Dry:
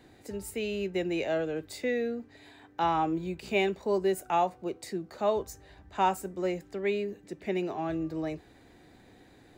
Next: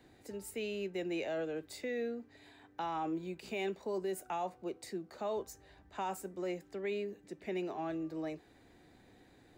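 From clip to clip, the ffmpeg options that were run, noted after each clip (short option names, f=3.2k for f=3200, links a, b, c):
-filter_complex "[0:a]acrossover=split=170|5700[a][b][c];[a]acompressor=threshold=-56dB:ratio=6[d];[b]alimiter=limit=-24dB:level=0:latency=1:release=17[e];[d][e][c]amix=inputs=3:normalize=0,volume=-5.5dB"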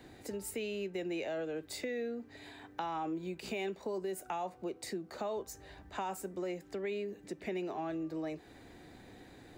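-af "acompressor=threshold=-46dB:ratio=2.5,volume=7.5dB"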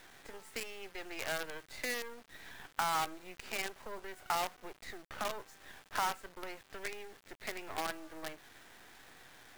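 -af "bandpass=f=1.5k:t=q:w=1.8:csg=0,acrusher=bits=8:dc=4:mix=0:aa=0.000001,volume=10.5dB"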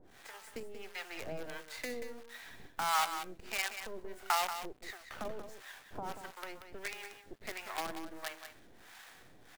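-filter_complex "[0:a]acrossover=split=610[a][b];[a]aeval=exprs='val(0)*(1-1/2+1/2*cos(2*PI*1.5*n/s))':c=same[c];[b]aeval=exprs='val(0)*(1-1/2-1/2*cos(2*PI*1.5*n/s))':c=same[d];[c][d]amix=inputs=2:normalize=0,aecho=1:1:184:0.335,volume=4.5dB"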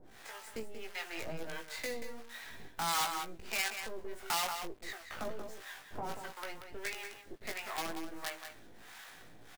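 -filter_complex "[0:a]asplit=2[a][b];[b]adelay=18,volume=-5dB[c];[a][c]amix=inputs=2:normalize=0,acrossover=split=2800[d][e];[d]asoftclip=type=tanh:threshold=-32.5dB[f];[f][e]amix=inputs=2:normalize=0,volume=1.5dB"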